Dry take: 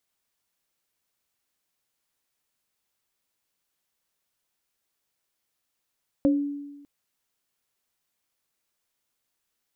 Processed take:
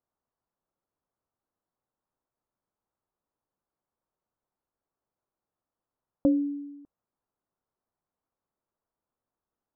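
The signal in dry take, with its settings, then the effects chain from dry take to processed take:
sine partials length 0.60 s, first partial 286 Hz, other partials 543 Hz, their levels -4.5 dB, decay 1.15 s, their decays 0.23 s, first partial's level -16 dB
LPF 1200 Hz 24 dB/oct

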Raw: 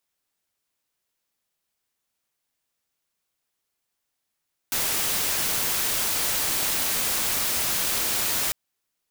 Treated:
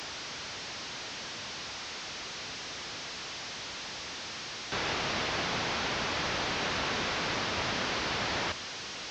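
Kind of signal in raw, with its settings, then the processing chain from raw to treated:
noise white, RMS -25 dBFS 3.80 s
delta modulation 32 kbps, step -33 dBFS; HPF 56 Hz

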